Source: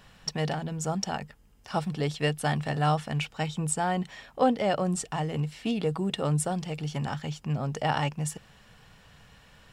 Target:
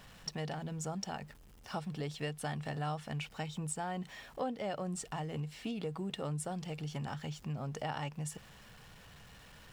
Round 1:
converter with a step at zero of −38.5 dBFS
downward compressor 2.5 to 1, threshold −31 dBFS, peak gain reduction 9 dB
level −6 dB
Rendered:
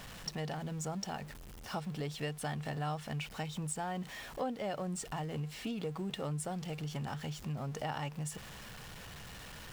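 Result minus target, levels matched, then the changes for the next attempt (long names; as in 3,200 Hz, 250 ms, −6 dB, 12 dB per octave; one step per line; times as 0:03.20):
converter with a step at zero: distortion +10 dB
change: converter with a step at zero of −49.5 dBFS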